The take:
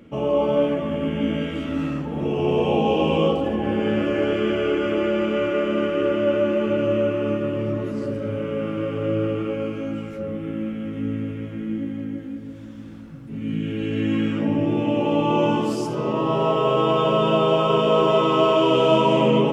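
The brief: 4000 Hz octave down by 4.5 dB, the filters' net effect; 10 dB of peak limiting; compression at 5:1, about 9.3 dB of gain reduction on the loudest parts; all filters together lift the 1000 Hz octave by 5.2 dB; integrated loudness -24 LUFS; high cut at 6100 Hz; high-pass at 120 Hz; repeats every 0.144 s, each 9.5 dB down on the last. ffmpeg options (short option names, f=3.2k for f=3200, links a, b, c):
-af "highpass=120,lowpass=6.1k,equalizer=f=1k:t=o:g=6.5,equalizer=f=4k:t=o:g=-7.5,acompressor=threshold=-22dB:ratio=5,alimiter=limit=-23dB:level=0:latency=1,aecho=1:1:144|288|432|576:0.335|0.111|0.0365|0.012,volume=6.5dB"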